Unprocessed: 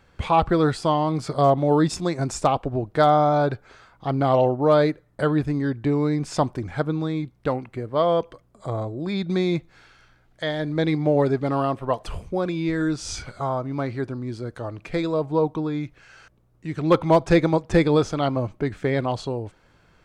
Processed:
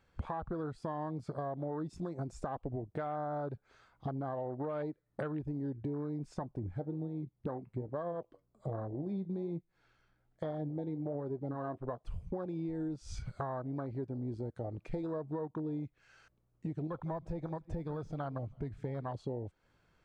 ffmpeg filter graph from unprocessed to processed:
-filter_complex "[0:a]asettb=1/sr,asplit=3[a][b][c];[a]atrim=end=6.344[d];[b]atrim=start=6.34:end=12.07,asetpts=PTS-STARTPTS,afade=t=in:d=0.004:c=qsin,afade=t=out:st=5.726:d=0.004:c=qsin,tiltshelf=f=1.3k:g=3.5,flanger=delay=5.2:depth=5.4:regen=65:speed=1.2:shape=sinusoidal[e];[c]atrim=start=12.066[f];[d][e]acrossfade=d=0.004:c1=hsin:c2=qsin[g];[g][f]acrossfade=d=0.004:c1=qsin:c2=hsin,asettb=1/sr,asplit=3[h][i][j];[h]atrim=end=16.874[k];[i]atrim=start=16.87:end=19.15,asetpts=PTS-STARTPTS,afade=t=in:d=0.004:c=qsin,afade=t=out:st=2.276:d=0.004:c=qsin,deesser=1,equalizer=f=350:t=o:w=1.7:g=-9.5,asplit=2[l][m];[m]adelay=161,lowpass=f=3.6k:p=1,volume=-20dB,asplit=2[n][o];[o]adelay=161,lowpass=f=3.6k:p=1,volume=0.5,asplit=2[p][q];[q]adelay=161,lowpass=f=3.6k:p=1,volume=0.5,asplit=2[r][s];[s]adelay=161,lowpass=f=3.6k:p=1,volume=0.5[t];[l][n][p][r][t]amix=inputs=5:normalize=0,atrim=end_sample=100548[u];[j]atrim=start=19.146[v];[k][u]acrossfade=d=0.004:c1=hsin:c2=qsin[w];[w][v]acrossfade=d=0.004:c1=qsin:c2=hsin,afwtdn=0.0398,alimiter=limit=-18dB:level=0:latency=1:release=289,acompressor=threshold=-40dB:ratio=5,volume=3dB"

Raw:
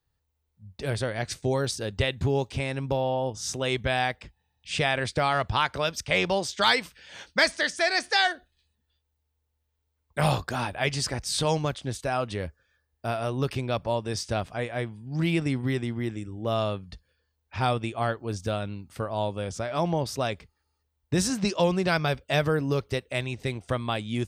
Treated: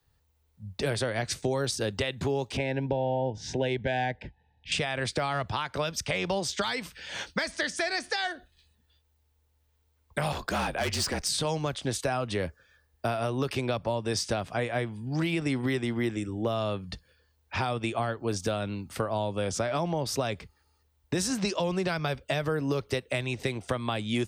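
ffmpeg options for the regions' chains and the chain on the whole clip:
-filter_complex "[0:a]asettb=1/sr,asplit=3[a][b][c];[a]atrim=end=2.574[d];[b]atrim=start=2.57:end=4.72,asetpts=PTS-STARTPTS,afade=t=in:d=0.004:c=qsin,afade=t=out:st=2.146:d=0.004:c=qsin,aemphasis=mode=reproduction:type=75fm,adynamicsmooth=sensitivity=1.5:basefreq=5.3k,asuperstop=centerf=1200:order=12:qfactor=2.4[e];[c]atrim=start=4.716[f];[d][e]acrossfade=d=0.004:c1=hsin:c2=qsin[g];[g][f]acrossfade=d=0.004:c1=qsin:c2=hsin,asettb=1/sr,asplit=3[h][i][j];[h]atrim=end=10.324[k];[i]atrim=start=10.32:end=11.28,asetpts=PTS-STARTPTS,afade=t=in:d=0.004:c=qsin,afade=t=out:st=0.956:d=0.004:c=qsin,volume=26.5dB,asoftclip=hard,volume=-26.5dB,afreqshift=-44[l];[j]atrim=start=11.276[m];[k][l]acrossfade=d=0.004:c1=hsin:c2=qsin[n];[n][m]acrossfade=d=0.004:c1=qsin:c2=hsin,alimiter=limit=-20dB:level=0:latency=1:release=314,acrossover=split=110|260[o][p][q];[o]acompressor=threshold=-53dB:ratio=4[r];[p]acompressor=threshold=-44dB:ratio=4[s];[q]acompressor=threshold=-35dB:ratio=4[t];[r][s][t]amix=inputs=3:normalize=0,volume=7.5dB"

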